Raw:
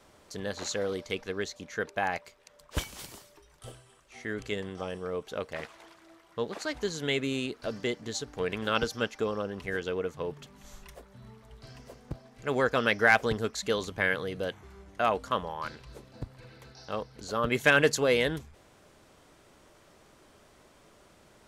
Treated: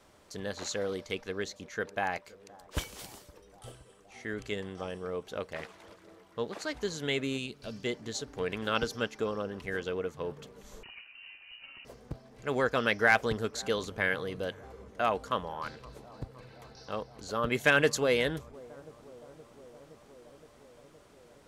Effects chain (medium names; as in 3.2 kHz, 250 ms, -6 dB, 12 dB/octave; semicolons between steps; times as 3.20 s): bucket-brigade echo 518 ms, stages 4096, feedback 77%, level -22 dB; 7.38–7.85 s: time-frequency box 240–2200 Hz -7 dB; 10.83–11.85 s: frequency inversion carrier 2.9 kHz; trim -2 dB